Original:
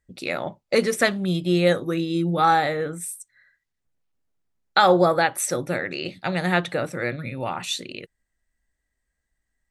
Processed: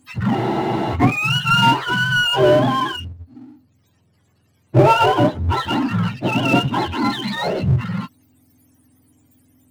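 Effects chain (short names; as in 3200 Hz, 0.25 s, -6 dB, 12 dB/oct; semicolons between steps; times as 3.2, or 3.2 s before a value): spectrum mirrored in octaves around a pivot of 700 Hz; power-law curve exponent 0.7; spectral freeze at 0.36, 0.57 s; gain +1.5 dB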